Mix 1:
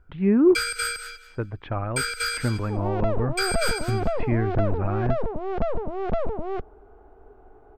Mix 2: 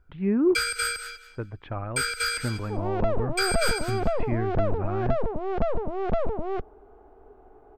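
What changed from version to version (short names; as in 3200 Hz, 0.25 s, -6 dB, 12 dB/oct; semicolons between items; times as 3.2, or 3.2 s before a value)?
speech -4.5 dB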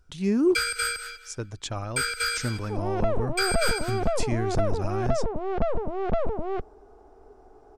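speech: remove inverse Chebyshev low-pass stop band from 7000 Hz, stop band 60 dB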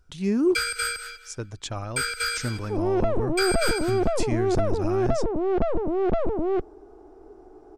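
second sound: add bell 330 Hz +14 dB 0.39 oct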